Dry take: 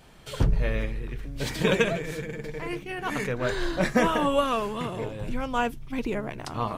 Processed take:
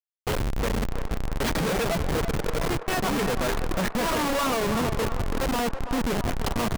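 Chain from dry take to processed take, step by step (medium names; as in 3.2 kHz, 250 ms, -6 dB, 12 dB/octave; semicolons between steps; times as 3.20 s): reverb removal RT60 0.86 s; comb 4.3 ms, depth 46%; in parallel at -3 dB: compression 12:1, threshold -33 dBFS, peak gain reduction 19 dB; on the sum: peak limiter -16 dBFS, peak gain reduction 10 dB; Schmitt trigger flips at -30 dBFS; on a send: band-passed feedback delay 331 ms, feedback 60%, band-pass 940 Hz, level -8 dB; on the sum: trim +3 dB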